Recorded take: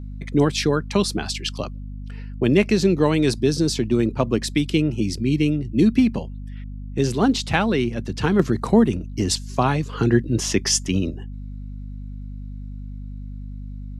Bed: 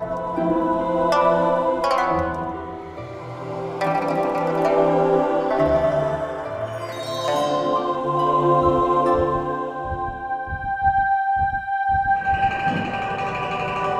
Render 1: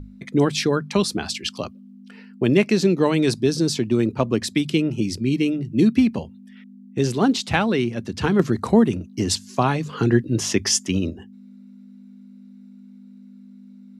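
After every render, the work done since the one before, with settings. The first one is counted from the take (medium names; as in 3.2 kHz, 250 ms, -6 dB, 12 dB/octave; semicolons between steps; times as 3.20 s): hum notches 50/100/150 Hz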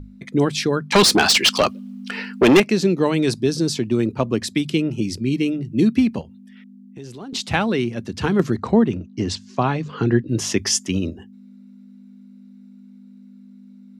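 0.92–2.60 s: overdrive pedal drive 26 dB, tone 6.9 kHz, clips at -4 dBFS; 6.21–7.33 s: compression 3:1, threshold -38 dBFS; 8.56–10.29 s: distance through air 110 m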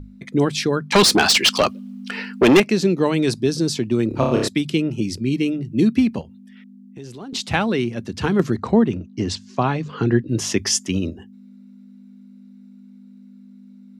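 4.08–4.48 s: flutter echo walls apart 5 m, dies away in 0.79 s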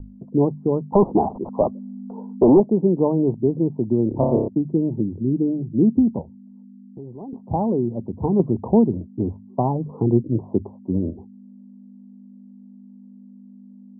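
steep low-pass 960 Hz 72 dB/octave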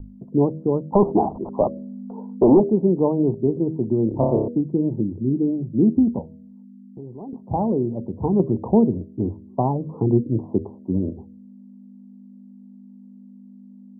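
de-hum 79.87 Hz, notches 8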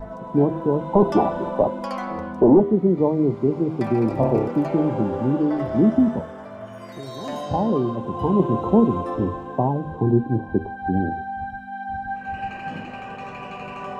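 add bed -10 dB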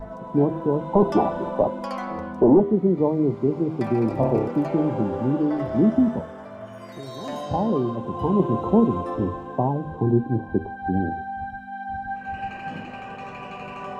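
trim -1.5 dB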